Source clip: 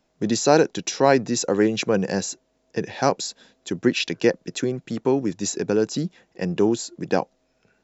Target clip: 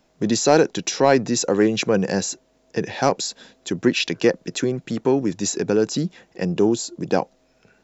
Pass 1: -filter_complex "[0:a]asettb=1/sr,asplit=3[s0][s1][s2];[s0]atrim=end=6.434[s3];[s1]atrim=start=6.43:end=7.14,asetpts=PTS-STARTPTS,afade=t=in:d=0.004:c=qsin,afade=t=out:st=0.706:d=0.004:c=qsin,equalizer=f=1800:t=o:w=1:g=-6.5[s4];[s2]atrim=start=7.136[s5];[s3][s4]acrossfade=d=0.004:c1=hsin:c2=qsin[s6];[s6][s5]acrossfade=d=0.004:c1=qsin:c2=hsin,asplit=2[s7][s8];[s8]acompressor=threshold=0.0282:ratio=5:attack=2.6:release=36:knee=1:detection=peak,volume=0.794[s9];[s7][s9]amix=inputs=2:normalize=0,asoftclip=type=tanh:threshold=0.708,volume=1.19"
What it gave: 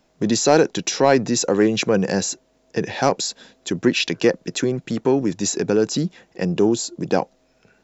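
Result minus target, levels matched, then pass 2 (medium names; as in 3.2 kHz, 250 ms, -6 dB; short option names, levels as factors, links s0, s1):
compression: peak gain reduction -8 dB
-filter_complex "[0:a]asettb=1/sr,asplit=3[s0][s1][s2];[s0]atrim=end=6.434[s3];[s1]atrim=start=6.43:end=7.14,asetpts=PTS-STARTPTS,afade=t=in:d=0.004:c=qsin,afade=t=out:st=0.706:d=0.004:c=qsin,equalizer=f=1800:t=o:w=1:g=-6.5[s4];[s2]atrim=start=7.136[s5];[s3][s4]acrossfade=d=0.004:c1=hsin:c2=qsin[s6];[s6][s5]acrossfade=d=0.004:c1=qsin:c2=hsin,asplit=2[s7][s8];[s8]acompressor=threshold=0.00891:ratio=5:attack=2.6:release=36:knee=1:detection=peak,volume=0.794[s9];[s7][s9]amix=inputs=2:normalize=0,asoftclip=type=tanh:threshold=0.708,volume=1.19"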